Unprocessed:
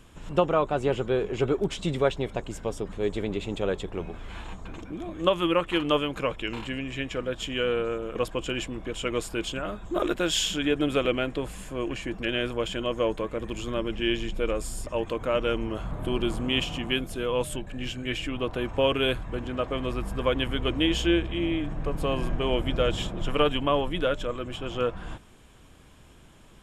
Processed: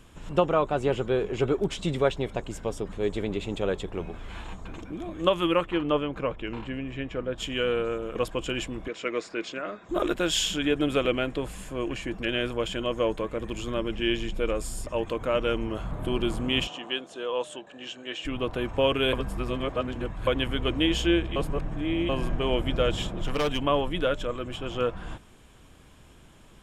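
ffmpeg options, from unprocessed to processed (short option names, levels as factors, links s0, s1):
-filter_complex "[0:a]asettb=1/sr,asplit=3[s0][s1][s2];[s0]atrim=end=5.664[s3];[s1]atrim=start=5.66:end=7.38,asetpts=PTS-STARTPTS,afade=t=in:d=0.004:c=qsin,afade=t=out:st=1.716:d=0.004:c=qsin,lowpass=f=1400:p=1[s4];[s2]atrim=start=7.376[s5];[s3][s4]acrossfade=d=0.004:c1=hsin:c2=qsin[s6];[s6][s5]acrossfade=d=0.004:c1=qsin:c2=hsin,asettb=1/sr,asplit=3[s7][s8][s9];[s7]atrim=end=8.884[s10];[s8]atrim=start=8.88:end=9.89,asetpts=PTS-STARTPTS,afade=t=in:d=0.004:c=qsin,afade=t=out:st=1.006:d=0.004:c=qsin,highpass=280,equalizer=f=860:t=q:w=4:g=-6,equalizer=f=2000:t=q:w=4:g=5,equalizer=f=3100:t=q:w=4:g=-9,lowpass=f=5900:w=0.5412,lowpass=f=5900:w=1.3066[s11];[s9]atrim=start=9.886[s12];[s10][s11]acrossfade=d=0.004:c1=hsin:c2=qsin[s13];[s13][s12]acrossfade=d=0.004:c1=qsin:c2=hsin,asettb=1/sr,asplit=3[s14][s15][s16];[s14]atrim=end=16.674[s17];[s15]atrim=start=16.67:end=18.25,asetpts=PTS-STARTPTS,afade=t=in:d=0.004:c=qsin,afade=t=out:st=1.576:d=0.004:c=qsin,highpass=440,equalizer=f=1400:t=q:w=4:g=-3,equalizer=f=2200:t=q:w=4:g=-9,equalizer=f=4900:t=q:w=4:g=-7,lowpass=f=7000:w=0.5412,lowpass=f=7000:w=1.3066[s18];[s16]atrim=start=18.246[s19];[s17][s18]acrossfade=d=0.004:c1=hsin:c2=qsin[s20];[s20][s19]acrossfade=d=0.004:c1=qsin:c2=hsin,asettb=1/sr,asplit=3[s21][s22][s23];[s21]atrim=end=23.184[s24];[s22]atrim=start=23.18:end=23.62,asetpts=PTS-STARTPTS,afade=t=in:d=0.004:c=qsin,afade=t=out:st=0.436:d=0.004:c=qsin,volume=12.6,asoftclip=hard,volume=0.0794[s25];[s23]atrim=start=23.616[s26];[s24][s25]acrossfade=d=0.004:c1=hsin:c2=qsin[s27];[s27][s26]acrossfade=d=0.004:c1=qsin:c2=hsin,asplit=5[s28][s29][s30][s31][s32];[s28]atrim=end=19.132[s33];[s29]atrim=start=19.128:end=20.272,asetpts=PTS-STARTPTS,areverse[s34];[s30]atrim=start=20.268:end=21.362[s35];[s31]atrim=start=21.358:end=22.092,asetpts=PTS-STARTPTS,areverse[s36];[s32]atrim=start=22.088[s37];[s33][s34]acrossfade=d=0.004:c1=hsin:c2=hsin[s38];[s38][s35]acrossfade=d=0.004:c1=hsin:c2=hsin[s39];[s39][s36]acrossfade=d=0.004:c1=hsin:c2=hsin[s40];[s40][s37]acrossfade=d=0.004:c1=hsin:c2=hsin"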